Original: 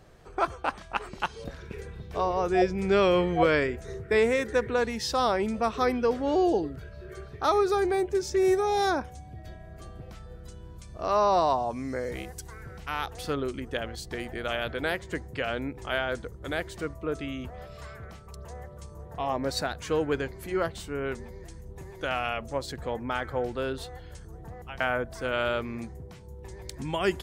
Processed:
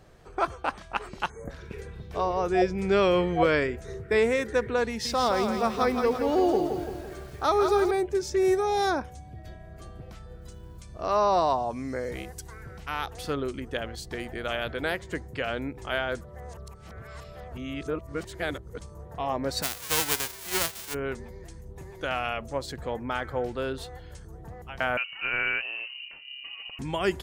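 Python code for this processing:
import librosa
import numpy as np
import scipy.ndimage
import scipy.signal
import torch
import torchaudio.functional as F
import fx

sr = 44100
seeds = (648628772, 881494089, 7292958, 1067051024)

y = fx.spec_erase(x, sr, start_s=1.3, length_s=0.2, low_hz=2300.0, high_hz=6100.0)
y = fx.echo_crushed(y, sr, ms=169, feedback_pct=55, bits=8, wet_db=-6.0, at=(4.88, 7.91))
y = fx.quant_float(y, sr, bits=4, at=(10.41, 10.83))
y = fx.envelope_flatten(y, sr, power=0.1, at=(19.62, 20.93), fade=0.02)
y = fx.freq_invert(y, sr, carrier_hz=2900, at=(24.97, 26.79))
y = fx.edit(y, sr, fx.reverse_span(start_s=16.21, length_s=2.6), tone=tone)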